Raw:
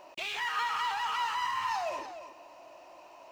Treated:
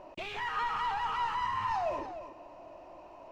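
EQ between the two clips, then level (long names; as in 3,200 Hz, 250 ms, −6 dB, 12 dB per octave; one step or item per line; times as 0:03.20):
spectral tilt −4 dB per octave
0.0 dB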